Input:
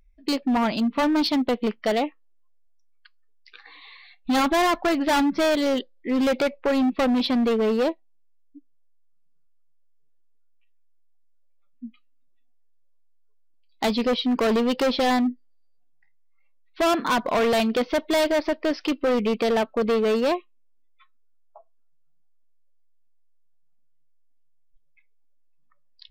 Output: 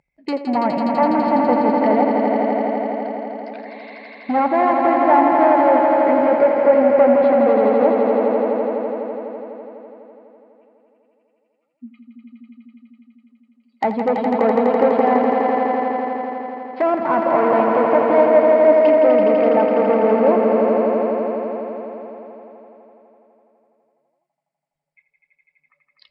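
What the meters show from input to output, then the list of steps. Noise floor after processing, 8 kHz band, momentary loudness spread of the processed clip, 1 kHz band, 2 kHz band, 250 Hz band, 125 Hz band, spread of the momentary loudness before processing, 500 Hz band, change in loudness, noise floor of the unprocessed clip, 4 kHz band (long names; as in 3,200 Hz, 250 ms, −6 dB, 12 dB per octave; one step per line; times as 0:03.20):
−73 dBFS, below −20 dB, 16 LU, +10.5 dB, +2.0 dB, +4.0 dB, can't be measured, 5 LU, +10.5 dB, +6.5 dB, −57 dBFS, below −10 dB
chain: loudspeaker in its box 140–8,900 Hz, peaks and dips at 150 Hz +7 dB, 570 Hz +7 dB, 850 Hz +9 dB, 2,100 Hz +8 dB, 3,500 Hz −9 dB, 6,100 Hz −8 dB
treble cut that deepens with the level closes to 1,300 Hz, closed at −18 dBFS
echo that builds up and dies away 83 ms, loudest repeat 5, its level −6 dB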